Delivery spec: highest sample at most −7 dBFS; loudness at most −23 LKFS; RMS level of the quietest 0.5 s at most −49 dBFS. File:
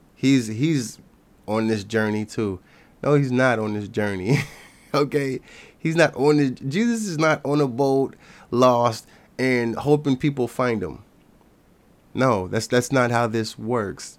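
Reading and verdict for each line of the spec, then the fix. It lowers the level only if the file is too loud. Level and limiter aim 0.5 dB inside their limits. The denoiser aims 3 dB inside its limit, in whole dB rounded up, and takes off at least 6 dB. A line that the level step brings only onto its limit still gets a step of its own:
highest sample −4.5 dBFS: out of spec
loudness −22.0 LKFS: out of spec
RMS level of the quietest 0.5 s −56 dBFS: in spec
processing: level −1.5 dB
brickwall limiter −7.5 dBFS

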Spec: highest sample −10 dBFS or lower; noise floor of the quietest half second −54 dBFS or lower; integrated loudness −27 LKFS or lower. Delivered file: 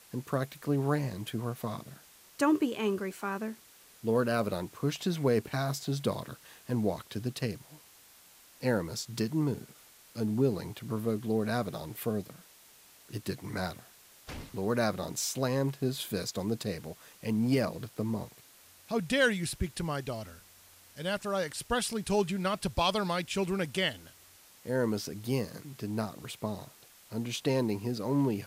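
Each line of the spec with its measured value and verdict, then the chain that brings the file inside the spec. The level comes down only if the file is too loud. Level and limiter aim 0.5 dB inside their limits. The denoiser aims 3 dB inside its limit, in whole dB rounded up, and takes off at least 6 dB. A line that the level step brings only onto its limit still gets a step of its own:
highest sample −15.5 dBFS: in spec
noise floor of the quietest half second −58 dBFS: in spec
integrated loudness −32.5 LKFS: in spec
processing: no processing needed

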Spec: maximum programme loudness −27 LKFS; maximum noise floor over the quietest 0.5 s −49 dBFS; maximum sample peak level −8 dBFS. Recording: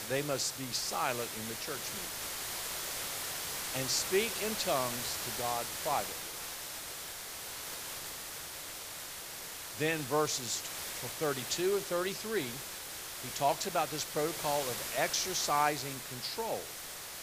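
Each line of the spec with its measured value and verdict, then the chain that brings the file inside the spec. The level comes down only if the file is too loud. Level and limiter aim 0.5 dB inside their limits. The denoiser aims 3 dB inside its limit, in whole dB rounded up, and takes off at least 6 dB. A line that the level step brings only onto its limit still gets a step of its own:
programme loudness −34.5 LKFS: in spec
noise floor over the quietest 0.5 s −44 dBFS: out of spec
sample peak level −15.0 dBFS: in spec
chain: broadband denoise 8 dB, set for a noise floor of −44 dBFS

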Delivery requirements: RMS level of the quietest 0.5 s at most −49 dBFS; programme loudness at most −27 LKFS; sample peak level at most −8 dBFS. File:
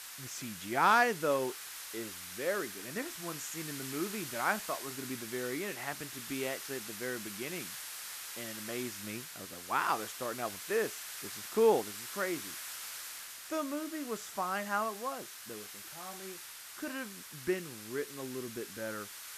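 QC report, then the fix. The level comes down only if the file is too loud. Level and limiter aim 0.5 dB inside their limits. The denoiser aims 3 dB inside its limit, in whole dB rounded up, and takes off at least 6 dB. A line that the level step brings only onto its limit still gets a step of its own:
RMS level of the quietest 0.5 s −48 dBFS: out of spec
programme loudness −36.0 LKFS: in spec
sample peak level −15.5 dBFS: in spec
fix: broadband denoise 6 dB, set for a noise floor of −48 dBFS

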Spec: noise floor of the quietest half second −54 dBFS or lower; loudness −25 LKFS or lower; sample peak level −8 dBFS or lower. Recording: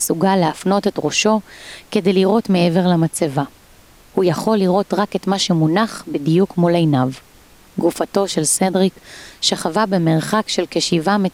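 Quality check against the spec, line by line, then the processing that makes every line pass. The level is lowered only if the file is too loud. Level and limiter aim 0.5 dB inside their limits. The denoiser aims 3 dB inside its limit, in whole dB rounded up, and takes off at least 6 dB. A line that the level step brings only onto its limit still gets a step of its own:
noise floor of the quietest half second −47 dBFS: out of spec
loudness −17.0 LKFS: out of spec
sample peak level −2.5 dBFS: out of spec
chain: level −8.5 dB

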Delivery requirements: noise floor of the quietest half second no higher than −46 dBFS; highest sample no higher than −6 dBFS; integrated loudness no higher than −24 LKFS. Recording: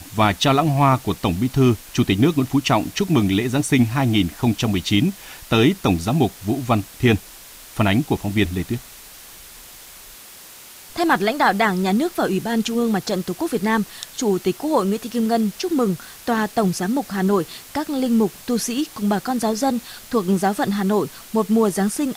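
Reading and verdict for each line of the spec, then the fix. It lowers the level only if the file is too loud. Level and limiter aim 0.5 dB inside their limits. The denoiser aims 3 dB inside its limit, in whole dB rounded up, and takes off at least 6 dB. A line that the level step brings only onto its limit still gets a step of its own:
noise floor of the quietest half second −42 dBFS: out of spec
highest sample −5.5 dBFS: out of spec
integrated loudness −20.5 LKFS: out of spec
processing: broadband denoise 6 dB, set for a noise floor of −42 dBFS
level −4 dB

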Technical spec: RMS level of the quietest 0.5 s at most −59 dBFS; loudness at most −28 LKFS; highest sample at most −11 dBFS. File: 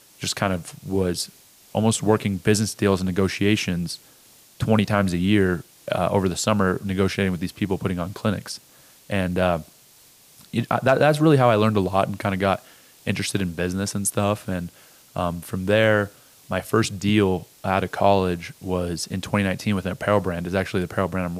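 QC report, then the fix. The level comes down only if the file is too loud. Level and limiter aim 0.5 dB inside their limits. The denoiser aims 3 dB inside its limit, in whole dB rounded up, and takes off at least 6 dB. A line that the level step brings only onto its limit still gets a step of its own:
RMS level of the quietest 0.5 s −53 dBFS: out of spec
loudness −23.0 LKFS: out of spec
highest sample −4.5 dBFS: out of spec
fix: broadband denoise 6 dB, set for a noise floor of −53 dBFS
level −5.5 dB
brickwall limiter −11.5 dBFS

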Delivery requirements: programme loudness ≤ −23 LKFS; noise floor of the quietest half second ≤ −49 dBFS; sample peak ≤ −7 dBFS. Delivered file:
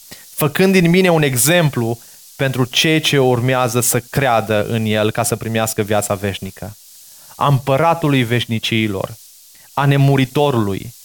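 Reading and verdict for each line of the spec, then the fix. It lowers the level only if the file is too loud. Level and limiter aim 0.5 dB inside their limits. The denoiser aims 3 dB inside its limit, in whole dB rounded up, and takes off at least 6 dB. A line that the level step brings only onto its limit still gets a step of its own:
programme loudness −15.5 LKFS: out of spec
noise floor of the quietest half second −44 dBFS: out of spec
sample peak −2.5 dBFS: out of spec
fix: level −8 dB

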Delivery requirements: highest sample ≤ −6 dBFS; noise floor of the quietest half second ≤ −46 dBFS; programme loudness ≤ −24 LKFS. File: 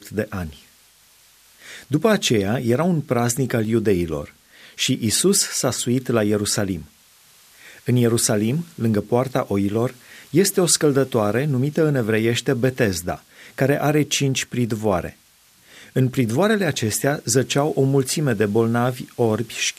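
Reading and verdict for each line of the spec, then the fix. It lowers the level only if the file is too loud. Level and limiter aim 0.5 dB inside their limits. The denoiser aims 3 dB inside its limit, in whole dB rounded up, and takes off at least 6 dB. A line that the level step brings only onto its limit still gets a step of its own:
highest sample −4.5 dBFS: out of spec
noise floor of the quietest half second −55 dBFS: in spec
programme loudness −20.5 LKFS: out of spec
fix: level −4 dB

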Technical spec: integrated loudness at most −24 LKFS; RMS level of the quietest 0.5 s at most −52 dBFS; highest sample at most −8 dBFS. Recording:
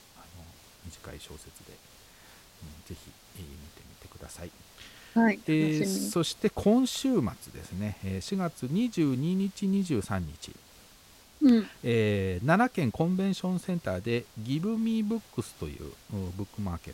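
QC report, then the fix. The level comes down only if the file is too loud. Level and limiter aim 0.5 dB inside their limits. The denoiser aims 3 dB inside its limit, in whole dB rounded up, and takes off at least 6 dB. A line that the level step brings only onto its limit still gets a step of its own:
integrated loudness −29.0 LKFS: in spec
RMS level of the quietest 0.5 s −56 dBFS: in spec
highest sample −10.5 dBFS: in spec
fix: no processing needed

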